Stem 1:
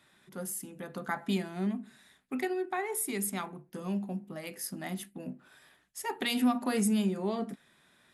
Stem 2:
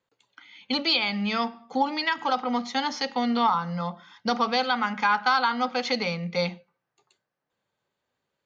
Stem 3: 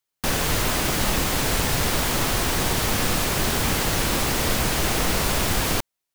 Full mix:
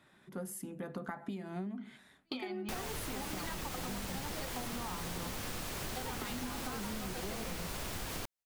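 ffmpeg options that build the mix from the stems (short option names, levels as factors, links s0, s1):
-filter_complex "[0:a]volume=1.41,asplit=2[s0][s1];[1:a]bandreject=f=60:t=h:w=6,bandreject=f=120:t=h:w=6,bandreject=f=180:t=h:w=6,bandreject=f=240:t=h:w=6,asoftclip=type=tanh:threshold=0.237,adelay=1400,volume=0.596[s2];[2:a]adelay=2450,volume=0.335[s3];[s1]apad=whole_len=434395[s4];[s2][s4]sidechaingate=range=0.00501:threshold=0.00316:ratio=16:detection=peak[s5];[s0][s5]amix=inputs=2:normalize=0,highshelf=f=2100:g=-9.5,acompressor=threshold=0.0316:ratio=6,volume=1[s6];[s3][s6]amix=inputs=2:normalize=0,acompressor=threshold=0.0141:ratio=6"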